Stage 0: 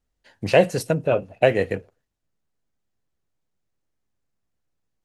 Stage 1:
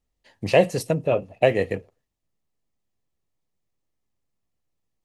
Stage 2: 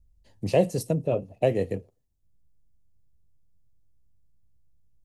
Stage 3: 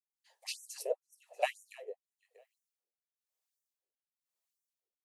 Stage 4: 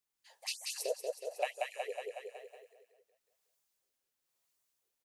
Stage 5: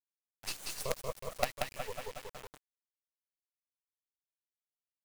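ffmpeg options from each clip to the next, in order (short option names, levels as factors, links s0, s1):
-af "bandreject=f=1500:w=5.1,volume=0.891"
-filter_complex "[0:a]equalizer=f=1800:t=o:w=2.5:g=-13.5,acrossover=split=120|1900[s0][s1][s2];[s0]acompressor=mode=upward:threshold=0.00562:ratio=2.5[s3];[s3][s1][s2]amix=inputs=3:normalize=0"
-filter_complex "[0:a]aecho=1:1:319|638|957:0.237|0.0545|0.0125,acrossover=split=550[s0][s1];[s0]aeval=exprs='val(0)*(1-1/2+1/2*cos(2*PI*1*n/s))':c=same[s2];[s1]aeval=exprs='val(0)*(1-1/2-1/2*cos(2*PI*1*n/s))':c=same[s3];[s2][s3]amix=inputs=2:normalize=0,afftfilt=real='re*gte(b*sr/1024,350*pow(5700/350,0.5+0.5*sin(2*PI*2*pts/sr)))':imag='im*gte(b*sr/1024,350*pow(5700/350,0.5+0.5*sin(2*PI*2*pts/sr)))':win_size=1024:overlap=0.75,volume=1.33"
-af "aecho=1:1:184|368|552|736|920|1104:0.631|0.309|0.151|0.0742|0.0364|0.0178,acompressor=threshold=0.00501:ratio=2,volume=2.24"
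-af "acrusher=bits=5:dc=4:mix=0:aa=0.000001,volume=1.41"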